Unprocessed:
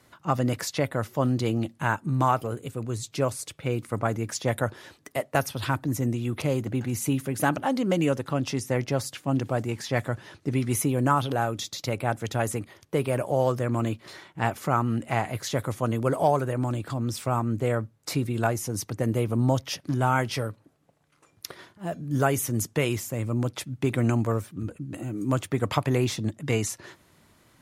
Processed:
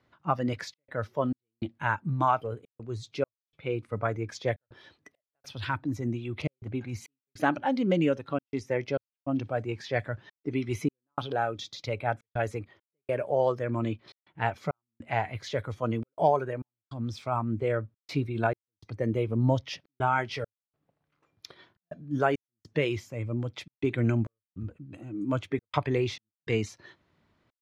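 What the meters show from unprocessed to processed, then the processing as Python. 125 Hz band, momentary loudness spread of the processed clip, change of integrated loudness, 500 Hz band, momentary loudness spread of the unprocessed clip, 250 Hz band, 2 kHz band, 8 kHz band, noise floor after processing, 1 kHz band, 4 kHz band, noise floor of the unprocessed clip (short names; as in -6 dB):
-6.0 dB, 13 LU, -3.5 dB, -2.5 dB, 8 LU, -4.0 dB, -2.5 dB, -17.0 dB, under -85 dBFS, -2.5 dB, -5.5 dB, -62 dBFS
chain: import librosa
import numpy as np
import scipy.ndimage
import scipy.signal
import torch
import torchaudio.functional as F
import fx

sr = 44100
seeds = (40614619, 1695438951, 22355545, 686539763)

y = fx.noise_reduce_blind(x, sr, reduce_db=9)
y = fx.high_shelf(y, sr, hz=4800.0, db=6.0)
y = fx.step_gate(y, sr, bpm=102, pattern='xxxxx.xxx..xx', floor_db=-60.0, edge_ms=4.5)
y = fx.air_absorb(y, sr, metres=240.0)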